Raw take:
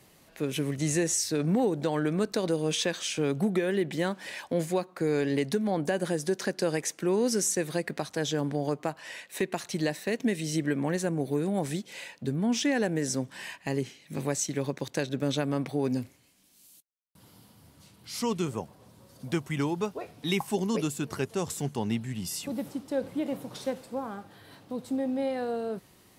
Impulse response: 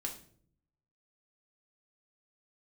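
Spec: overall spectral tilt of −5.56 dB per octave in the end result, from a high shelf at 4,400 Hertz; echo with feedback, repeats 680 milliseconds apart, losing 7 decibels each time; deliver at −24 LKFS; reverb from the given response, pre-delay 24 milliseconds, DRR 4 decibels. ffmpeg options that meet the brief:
-filter_complex "[0:a]highshelf=frequency=4400:gain=-7,aecho=1:1:680|1360|2040|2720|3400:0.447|0.201|0.0905|0.0407|0.0183,asplit=2[link_01][link_02];[1:a]atrim=start_sample=2205,adelay=24[link_03];[link_02][link_03]afir=irnorm=-1:irlink=0,volume=-4dB[link_04];[link_01][link_04]amix=inputs=2:normalize=0,volume=4.5dB"

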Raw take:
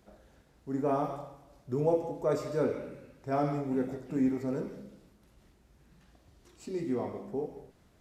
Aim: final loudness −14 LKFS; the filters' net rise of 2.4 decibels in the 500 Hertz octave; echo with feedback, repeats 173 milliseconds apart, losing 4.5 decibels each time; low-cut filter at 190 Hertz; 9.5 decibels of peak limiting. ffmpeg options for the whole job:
ffmpeg -i in.wav -af "highpass=190,equalizer=frequency=500:width_type=o:gain=3,alimiter=limit=-24dB:level=0:latency=1,aecho=1:1:173|346|519|692|865|1038|1211|1384|1557:0.596|0.357|0.214|0.129|0.0772|0.0463|0.0278|0.0167|0.01,volume=19.5dB" out.wav

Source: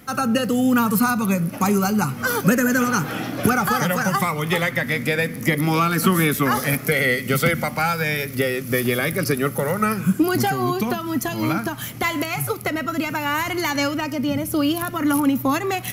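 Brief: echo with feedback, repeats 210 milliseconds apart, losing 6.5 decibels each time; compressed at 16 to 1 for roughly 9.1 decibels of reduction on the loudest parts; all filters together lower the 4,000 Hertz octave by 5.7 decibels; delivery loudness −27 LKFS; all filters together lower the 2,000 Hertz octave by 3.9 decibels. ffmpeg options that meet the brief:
ffmpeg -i in.wav -af "equalizer=frequency=2000:width_type=o:gain=-3.5,equalizer=frequency=4000:width_type=o:gain=-6.5,acompressor=threshold=-22dB:ratio=16,aecho=1:1:210|420|630|840|1050|1260:0.473|0.222|0.105|0.0491|0.0231|0.0109,volume=-1.5dB" out.wav

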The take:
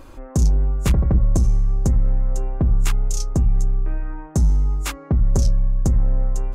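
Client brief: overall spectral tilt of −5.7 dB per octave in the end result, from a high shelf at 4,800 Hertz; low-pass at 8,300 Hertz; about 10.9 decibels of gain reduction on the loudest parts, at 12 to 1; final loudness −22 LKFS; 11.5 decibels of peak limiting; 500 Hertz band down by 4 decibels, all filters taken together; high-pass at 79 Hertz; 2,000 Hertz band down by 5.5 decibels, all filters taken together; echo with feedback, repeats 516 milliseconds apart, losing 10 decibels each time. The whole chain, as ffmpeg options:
ffmpeg -i in.wav -af "highpass=79,lowpass=8300,equalizer=frequency=500:width_type=o:gain=-5,equalizer=frequency=2000:width_type=o:gain=-8.5,highshelf=frequency=4800:gain=6.5,acompressor=threshold=-27dB:ratio=12,alimiter=level_in=1dB:limit=-24dB:level=0:latency=1,volume=-1dB,aecho=1:1:516|1032|1548|2064:0.316|0.101|0.0324|0.0104,volume=13.5dB" out.wav

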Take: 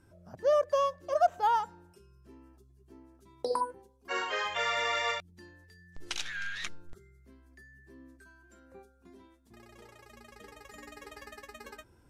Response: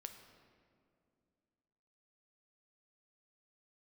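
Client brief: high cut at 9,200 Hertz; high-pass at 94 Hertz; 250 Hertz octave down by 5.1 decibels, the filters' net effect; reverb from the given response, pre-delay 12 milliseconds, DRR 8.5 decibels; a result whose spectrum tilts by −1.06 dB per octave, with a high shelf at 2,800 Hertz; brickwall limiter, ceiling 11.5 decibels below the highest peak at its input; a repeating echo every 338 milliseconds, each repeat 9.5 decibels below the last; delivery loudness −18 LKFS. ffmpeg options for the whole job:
-filter_complex "[0:a]highpass=94,lowpass=9200,equalizer=frequency=250:width_type=o:gain=-7.5,highshelf=frequency=2800:gain=5,alimiter=level_in=2.5dB:limit=-24dB:level=0:latency=1,volume=-2.5dB,aecho=1:1:338|676|1014|1352:0.335|0.111|0.0365|0.012,asplit=2[link_01][link_02];[1:a]atrim=start_sample=2205,adelay=12[link_03];[link_02][link_03]afir=irnorm=-1:irlink=0,volume=-3.5dB[link_04];[link_01][link_04]amix=inputs=2:normalize=0,volume=18.5dB"

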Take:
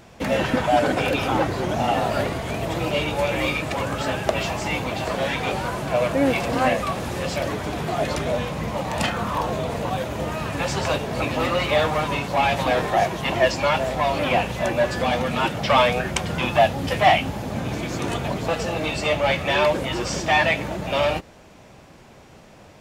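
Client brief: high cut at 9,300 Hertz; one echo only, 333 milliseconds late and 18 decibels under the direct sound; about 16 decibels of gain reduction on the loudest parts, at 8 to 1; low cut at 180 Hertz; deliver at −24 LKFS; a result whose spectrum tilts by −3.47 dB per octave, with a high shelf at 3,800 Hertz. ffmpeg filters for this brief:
ffmpeg -i in.wav -af "highpass=180,lowpass=9300,highshelf=frequency=3800:gain=6.5,acompressor=threshold=-28dB:ratio=8,aecho=1:1:333:0.126,volume=7dB" out.wav

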